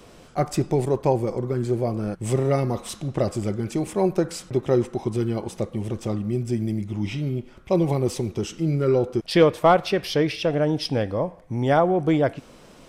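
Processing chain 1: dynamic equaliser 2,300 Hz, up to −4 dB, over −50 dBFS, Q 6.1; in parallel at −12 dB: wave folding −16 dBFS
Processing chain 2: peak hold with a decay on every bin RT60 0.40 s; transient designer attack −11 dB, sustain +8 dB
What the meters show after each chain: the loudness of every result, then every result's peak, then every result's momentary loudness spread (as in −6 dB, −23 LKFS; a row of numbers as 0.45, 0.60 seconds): −22.5, −23.0 LKFS; −7.0, −4.0 dBFS; 8, 9 LU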